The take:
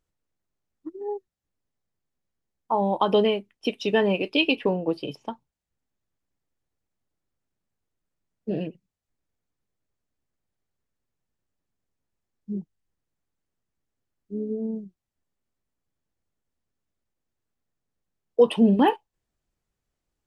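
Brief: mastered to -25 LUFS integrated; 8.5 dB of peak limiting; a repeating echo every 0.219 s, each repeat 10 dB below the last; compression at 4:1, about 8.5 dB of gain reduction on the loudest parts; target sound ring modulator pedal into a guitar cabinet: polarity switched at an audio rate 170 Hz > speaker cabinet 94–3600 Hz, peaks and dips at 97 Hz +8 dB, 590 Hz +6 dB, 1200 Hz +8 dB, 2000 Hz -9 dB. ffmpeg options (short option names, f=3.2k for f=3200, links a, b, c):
-af "acompressor=threshold=-23dB:ratio=4,alimiter=limit=-19.5dB:level=0:latency=1,aecho=1:1:219|438|657|876:0.316|0.101|0.0324|0.0104,aeval=exprs='val(0)*sgn(sin(2*PI*170*n/s))':c=same,highpass=94,equalizer=f=97:t=q:w=4:g=8,equalizer=f=590:t=q:w=4:g=6,equalizer=f=1.2k:t=q:w=4:g=8,equalizer=f=2k:t=q:w=4:g=-9,lowpass=f=3.6k:w=0.5412,lowpass=f=3.6k:w=1.3066,volume=5dB"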